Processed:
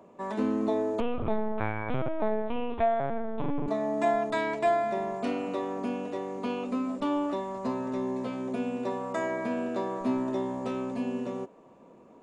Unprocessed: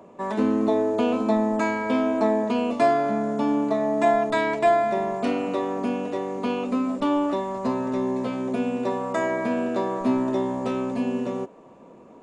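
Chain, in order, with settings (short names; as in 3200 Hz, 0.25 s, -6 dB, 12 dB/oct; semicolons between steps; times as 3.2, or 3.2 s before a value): 1–3.68 LPC vocoder at 8 kHz pitch kept; gain -6 dB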